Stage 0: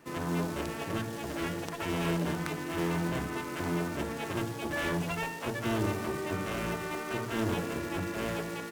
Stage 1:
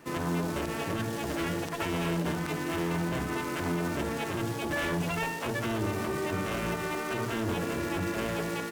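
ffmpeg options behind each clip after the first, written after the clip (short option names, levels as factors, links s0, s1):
-af "alimiter=level_in=1.33:limit=0.0631:level=0:latency=1:release=46,volume=0.75,volume=1.68"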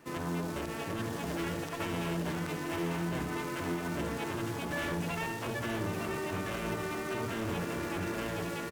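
-af "aecho=1:1:907:0.473,volume=0.596"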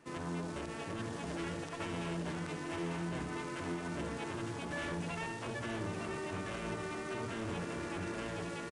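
-af "aresample=22050,aresample=44100,volume=0.596"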